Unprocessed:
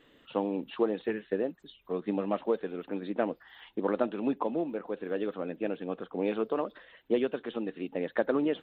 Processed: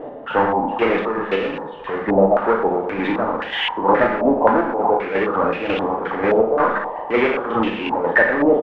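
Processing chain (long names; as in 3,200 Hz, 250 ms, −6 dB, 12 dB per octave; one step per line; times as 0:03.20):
low-shelf EQ 110 Hz −10.5 dB
double-tracking delay 36 ms −5 dB
gate pattern "x..xx..x.x" 166 BPM −12 dB
feedback echo with a high-pass in the loop 119 ms, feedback 63%, high-pass 350 Hz, level −19 dB
power curve on the samples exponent 0.5
parametric band 860 Hz +7.5 dB 0.25 octaves
four-comb reverb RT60 0.54 s, combs from 31 ms, DRR 4.5 dB
low-pass on a step sequencer 3.8 Hz 660–2,700 Hz
level +4 dB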